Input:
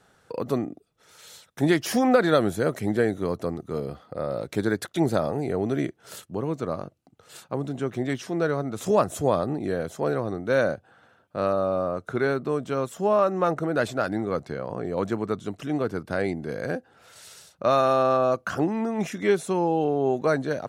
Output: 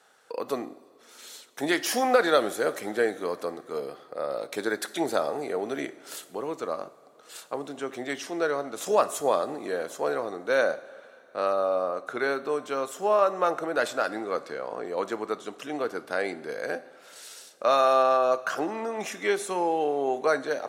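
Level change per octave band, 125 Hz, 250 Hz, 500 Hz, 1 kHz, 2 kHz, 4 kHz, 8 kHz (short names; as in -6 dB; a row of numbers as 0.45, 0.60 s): -18.5, -8.0, -1.5, +0.5, +1.0, +2.0, +2.5 dB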